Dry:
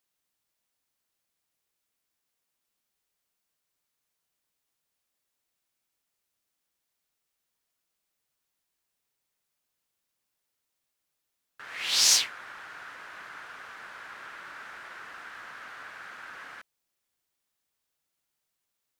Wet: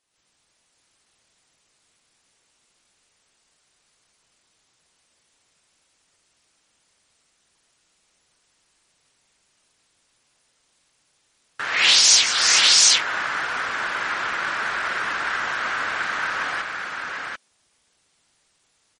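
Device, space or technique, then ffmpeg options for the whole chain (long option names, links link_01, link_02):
low-bitrate web radio: -filter_complex "[0:a]asettb=1/sr,asplit=3[link_01][link_02][link_03];[link_01]atrim=end=11.634[link_04];[link_02]atrim=start=11.63:end=12.91,asetpts=PTS-STARTPTS,afade=type=in:duration=0.004:curve=qsin,afade=type=out:start_time=1.276:duration=0.004:curve=qsin,lowshelf=frequency=120:gain=-3.5[link_05];[link_03]atrim=start=12.906[link_06];[link_04][link_05]acrossfade=duration=0.004:curve1=hsin:curve2=qsin[link_07];[link_07][link_06]acrossfade=duration=0.004:curve1=qsin:curve2=hsin,aecho=1:1:158|424|740:0.112|0.178|0.668,dynaudnorm=framelen=100:gausssize=3:maxgain=9.5dB,alimiter=limit=-12.5dB:level=0:latency=1:release=74,volume=7.5dB" -ar 48000 -c:a libmp3lame -b:a 40k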